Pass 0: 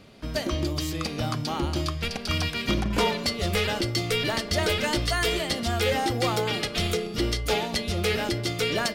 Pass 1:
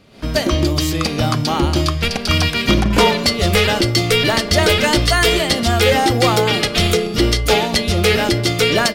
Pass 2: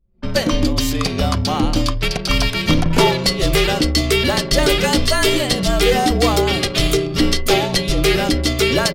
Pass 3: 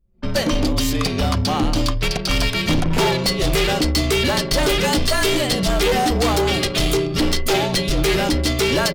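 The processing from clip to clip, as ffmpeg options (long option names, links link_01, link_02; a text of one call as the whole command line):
ffmpeg -i in.wav -af "dynaudnorm=framelen=100:gausssize=3:maxgain=11.5dB" out.wav
ffmpeg -i in.wav -af "afreqshift=-44,adynamicequalizer=threshold=0.0398:dfrequency=1700:dqfactor=0.72:tfrequency=1700:tqfactor=0.72:attack=5:release=100:ratio=0.375:range=2:mode=cutabove:tftype=bell,anlmdn=63.1" out.wav
ffmpeg -i in.wav -af "volume=14dB,asoftclip=hard,volume=-14dB" out.wav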